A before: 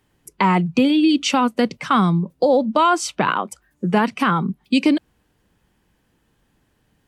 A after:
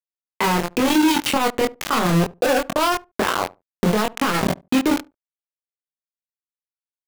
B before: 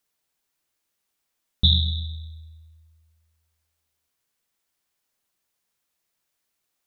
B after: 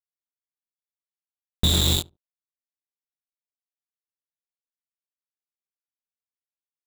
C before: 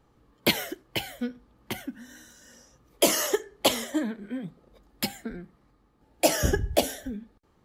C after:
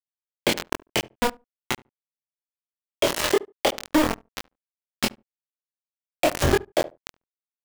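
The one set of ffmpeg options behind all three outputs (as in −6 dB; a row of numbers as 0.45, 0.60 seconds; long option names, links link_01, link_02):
-filter_complex "[0:a]lowpass=3500,bandreject=frequency=50:width_type=h:width=6,bandreject=frequency=100:width_type=h:width=6,bandreject=frequency=150:width_type=h:width=6,bandreject=frequency=200:width_type=h:width=6,bandreject=frequency=250:width_type=h:width=6,bandreject=frequency=300:width_type=h:width=6,bandreject=frequency=350:width_type=h:width=6,adynamicequalizer=threshold=0.02:dfrequency=450:dqfactor=1.3:tfrequency=450:tqfactor=1.3:attack=5:release=100:ratio=0.375:range=3:mode=boostabove:tftype=bell,acompressor=threshold=-23dB:ratio=10,aeval=exprs='val(0)*gte(abs(val(0)),0.0562)':channel_layout=same,asplit=2[link_01][link_02];[link_02]adelay=23,volume=-4dB[link_03];[link_01][link_03]amix=inputs=2:normalize=0,asplit=2[link_04][link_05];[link_05]adelay=72,lowpass=frequency=820:poles=1,volume=-22dB,asplit=2[link_06][link_07];[link_07]adelay=72,lowpass=frequency=820:poles=1,volume=0.16[link_08];[link_06][link_08]amix=inputs=2:normalize=0[link_09];[link_04][link_09]amix=inputs=2:normalize=0,alimiter=level_in=20dB:limit=-1dB:release=50:level=0:latency=1,volume=-8.5dB"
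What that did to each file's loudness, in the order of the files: −2.0, +0.5, +2.5 LU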